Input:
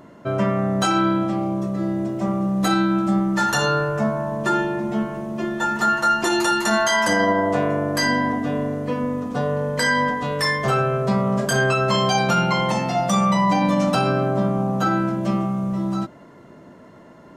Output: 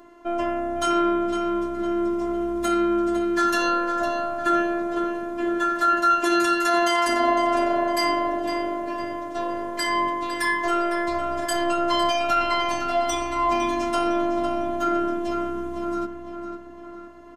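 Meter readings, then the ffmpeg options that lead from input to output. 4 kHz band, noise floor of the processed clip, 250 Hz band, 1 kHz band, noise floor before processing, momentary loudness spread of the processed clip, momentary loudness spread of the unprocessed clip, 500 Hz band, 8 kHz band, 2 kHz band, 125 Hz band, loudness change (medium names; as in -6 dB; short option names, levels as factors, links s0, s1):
-3.5 dB, -40 dBFS, -4.0 dB, -0.5 dB, -45 dBFS, 9 LU, 6 LU, -1.5 dB, -5.0 dB, -4.5 dB, -21.5 dB, -2.5 dB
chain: -filter_complex "[0:a]asplit=2[s0][s1];[s1]adelay=506,lowpass=f=4400:p=1,volume=0.422,asplit=2[s2][s3];[s3]adelay=506,lowpass=f=4400:p=1,volume=0.51,asplit=2[s4][s5];[s5]adelay=506,lowpass=f=4400:p=1,volume=0.51,asplit=2[s6][s7];[s7]adelay=506,lowpass=f=4400:p=1,volume=0.51,asplit=2[s8][s9];[s9]adelay=506,lowpass=f=4400:p=1,volume=0.51,asplit=2[s10][s11];[s11]adelay=506,lowpass=f=4400:p=1,volume=0.51[s12];[s0][s2][s4][s6][s8][s10][s12]amix=inputs=7:normalize=0,afftfilt=real='hypot(re,im)*cos(PI*b)':imag='0':win_size=512:overlap=0.75"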